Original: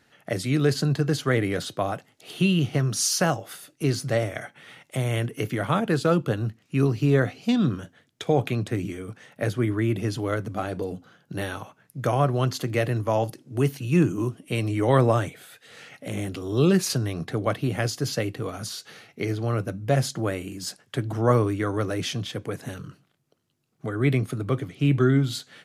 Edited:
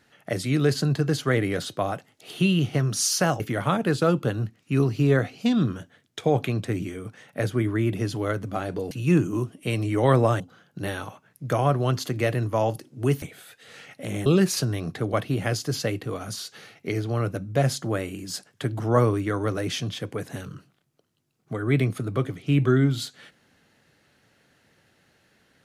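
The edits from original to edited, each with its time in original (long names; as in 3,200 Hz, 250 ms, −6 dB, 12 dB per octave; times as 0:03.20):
0:03.40–0:05.43: remove
0:13.76–0:15.25: move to 0:10.94
0:16.29–0:16.59: remove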